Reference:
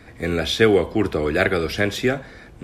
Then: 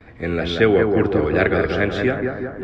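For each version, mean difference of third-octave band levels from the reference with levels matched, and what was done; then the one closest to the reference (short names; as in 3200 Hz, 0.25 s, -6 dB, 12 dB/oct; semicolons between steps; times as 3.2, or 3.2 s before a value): 6.5 dB: gate with hold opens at -42 dBFS; LPF 3100 Hz 12 dB/oct; on a send: analogue delay 0.182 s, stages 2048, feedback 61%, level -4 dB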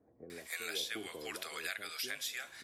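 12.0 dB: differentiator; compressor 6:1, threshold -45 dBFS, peak gain reduction 18 dB; bands offset in time lows, highs 0.3 s, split 620 Hz; gain +7.5 dB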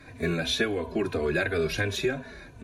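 3.5 dB: ripple EQ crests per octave 1.5, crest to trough 8 dB; compressor 4:1, threshold -20 dBFS, peak gain reduction 9.5 dB; endless flanger 3.2 ms -2.9 Hz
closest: third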